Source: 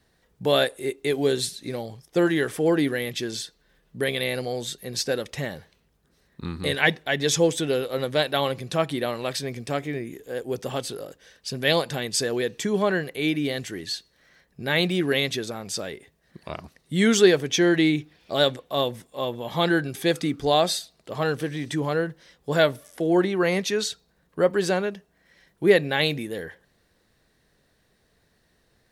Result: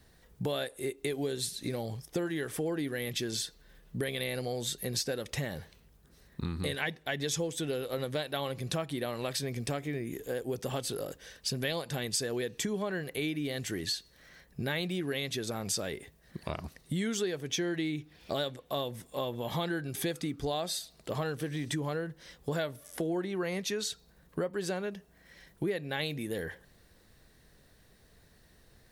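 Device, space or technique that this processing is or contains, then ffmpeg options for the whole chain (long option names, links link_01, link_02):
ASMR close-microphone chain: -af "lowshelf=frequency=110:gain=8,acompressor=threshold=-33dB:ratio=6,highshelf=frequency=9300:gain=7.5,volume=1.5dB"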